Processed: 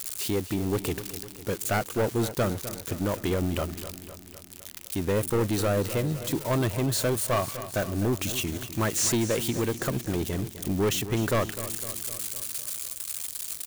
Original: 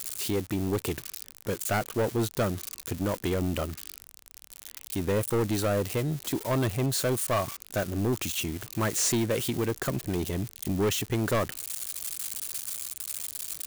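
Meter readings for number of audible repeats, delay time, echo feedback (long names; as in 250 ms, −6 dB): 5, 254 ms, 59%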